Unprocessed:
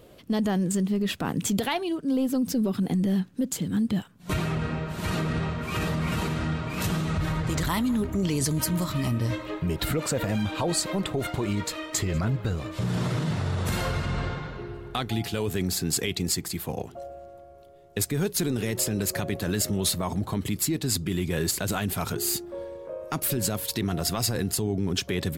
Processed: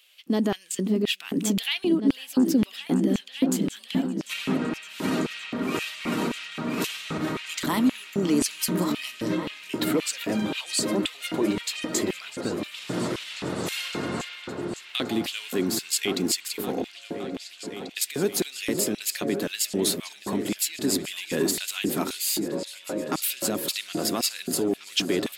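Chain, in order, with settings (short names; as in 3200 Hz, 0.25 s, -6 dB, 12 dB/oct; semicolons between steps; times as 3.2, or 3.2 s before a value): repeats that get brighter 0.563 s, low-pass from 400 Hz, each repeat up 2 oct, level -6 dB; LFO high-pass square 1.9 Hz 280–2700 Hz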